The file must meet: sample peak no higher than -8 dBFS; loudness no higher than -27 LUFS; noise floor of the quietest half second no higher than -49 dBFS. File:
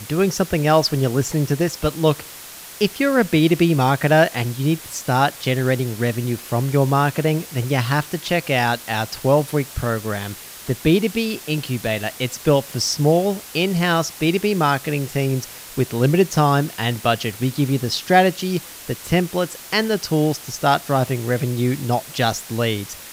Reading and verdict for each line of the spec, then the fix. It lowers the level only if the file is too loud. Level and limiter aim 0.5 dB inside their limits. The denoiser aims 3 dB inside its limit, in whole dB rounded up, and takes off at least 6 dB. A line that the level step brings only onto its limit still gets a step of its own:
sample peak -2.0 dBFS: fail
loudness -20.0 LUFS: fail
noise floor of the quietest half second -38 dBFS: fail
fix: noise reduction 7 dB, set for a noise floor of -38 dBFS; trim -7.5 dB

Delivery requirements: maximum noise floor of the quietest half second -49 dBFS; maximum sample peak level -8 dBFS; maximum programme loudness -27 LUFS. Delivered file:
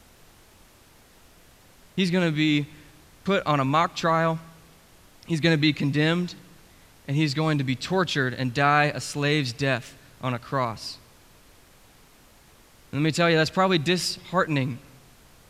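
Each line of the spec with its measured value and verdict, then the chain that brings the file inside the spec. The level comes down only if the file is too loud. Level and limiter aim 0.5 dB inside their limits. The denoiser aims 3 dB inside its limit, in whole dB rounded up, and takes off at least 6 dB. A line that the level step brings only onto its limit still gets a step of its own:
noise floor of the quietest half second -54 dBFS: pass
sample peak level -5.5 dBFS: fail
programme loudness -24.5 LUFS: fail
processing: trim -3 dB

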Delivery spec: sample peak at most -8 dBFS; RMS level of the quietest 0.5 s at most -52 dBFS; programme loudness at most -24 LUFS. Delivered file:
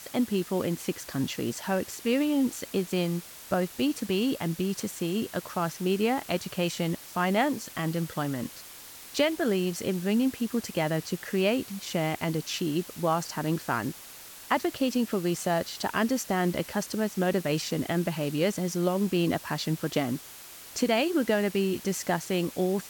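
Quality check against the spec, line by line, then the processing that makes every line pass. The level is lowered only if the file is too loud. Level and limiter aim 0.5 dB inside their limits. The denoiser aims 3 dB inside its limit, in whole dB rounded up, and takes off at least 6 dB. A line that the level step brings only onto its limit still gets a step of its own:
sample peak -11.5 dBFS: pass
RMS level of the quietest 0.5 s -46 dBFS: fail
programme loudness -29.0 LUFS: pass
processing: noise reduction 9 dB, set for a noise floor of -46 dBFS

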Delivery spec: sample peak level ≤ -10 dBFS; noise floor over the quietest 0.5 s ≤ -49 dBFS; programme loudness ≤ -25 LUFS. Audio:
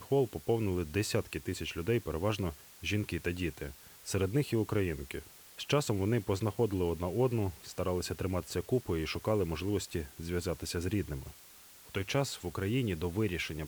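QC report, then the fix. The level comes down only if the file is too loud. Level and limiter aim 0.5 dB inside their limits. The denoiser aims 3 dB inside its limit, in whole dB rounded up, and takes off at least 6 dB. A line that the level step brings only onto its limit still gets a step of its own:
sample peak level -17.0 dBFS: pass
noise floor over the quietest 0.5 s -55 dBFS: pass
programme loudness -34.0 LUFS: pass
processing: none needed

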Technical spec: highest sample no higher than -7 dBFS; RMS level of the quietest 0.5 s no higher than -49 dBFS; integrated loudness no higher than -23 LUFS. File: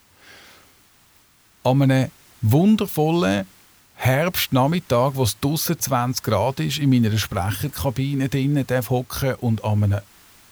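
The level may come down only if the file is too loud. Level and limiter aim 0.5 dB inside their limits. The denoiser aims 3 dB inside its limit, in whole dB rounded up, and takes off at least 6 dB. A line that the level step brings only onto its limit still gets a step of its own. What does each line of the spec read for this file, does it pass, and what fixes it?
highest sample -6.5 dBFS: fail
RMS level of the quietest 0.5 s -56 dBFS: pass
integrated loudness -21.0 LUFS: fail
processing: trim -2.5 dB

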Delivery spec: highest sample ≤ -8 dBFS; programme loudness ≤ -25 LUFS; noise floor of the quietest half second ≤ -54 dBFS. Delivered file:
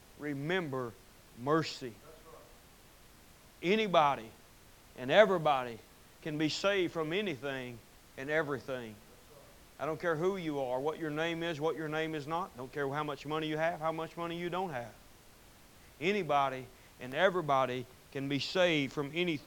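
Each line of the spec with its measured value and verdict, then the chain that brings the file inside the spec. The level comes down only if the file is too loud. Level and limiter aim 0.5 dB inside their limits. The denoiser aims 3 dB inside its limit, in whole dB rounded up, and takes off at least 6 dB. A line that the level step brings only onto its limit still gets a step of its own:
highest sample -8.5 dBFS: pass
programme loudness -33.5 LUFS: pass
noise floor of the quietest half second -58 dBFS: pass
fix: none needed

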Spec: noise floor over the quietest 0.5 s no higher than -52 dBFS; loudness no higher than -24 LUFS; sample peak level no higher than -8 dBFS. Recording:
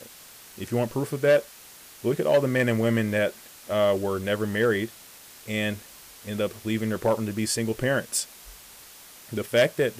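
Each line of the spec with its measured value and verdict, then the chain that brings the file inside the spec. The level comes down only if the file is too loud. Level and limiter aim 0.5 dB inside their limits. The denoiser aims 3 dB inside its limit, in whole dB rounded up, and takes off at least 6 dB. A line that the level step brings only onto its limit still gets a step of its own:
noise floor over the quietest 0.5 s -48 dBFS: fail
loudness -25.5 LUFS: pass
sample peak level -13.0 dBFS: pass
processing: noise reduction 7 dB, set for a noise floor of -48 dBFS

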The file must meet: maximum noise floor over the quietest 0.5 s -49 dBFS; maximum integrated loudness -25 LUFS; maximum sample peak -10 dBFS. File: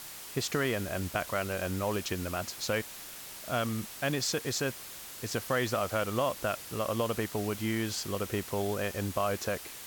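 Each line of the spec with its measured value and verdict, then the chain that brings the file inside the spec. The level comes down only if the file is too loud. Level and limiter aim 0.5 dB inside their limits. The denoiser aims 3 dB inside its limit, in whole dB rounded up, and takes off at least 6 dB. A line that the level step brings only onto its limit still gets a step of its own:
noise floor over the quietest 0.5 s -45 dBFS: fail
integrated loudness -32.5 LUFS: pass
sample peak -15.5 dBFS: pass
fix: noise reduction 7 dB, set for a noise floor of -45 dBFS

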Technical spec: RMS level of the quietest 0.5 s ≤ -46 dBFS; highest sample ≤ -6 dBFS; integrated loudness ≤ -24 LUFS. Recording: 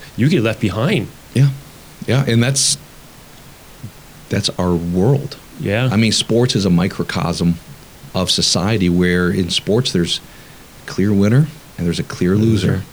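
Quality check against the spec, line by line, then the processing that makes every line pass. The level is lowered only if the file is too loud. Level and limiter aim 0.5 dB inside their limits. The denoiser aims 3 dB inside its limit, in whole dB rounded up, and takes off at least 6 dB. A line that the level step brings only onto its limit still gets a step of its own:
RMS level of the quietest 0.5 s -40 dBFS: fail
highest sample -4.0 dBFS: fail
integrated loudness -16.5 LUFS: fail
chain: trim -8 dB

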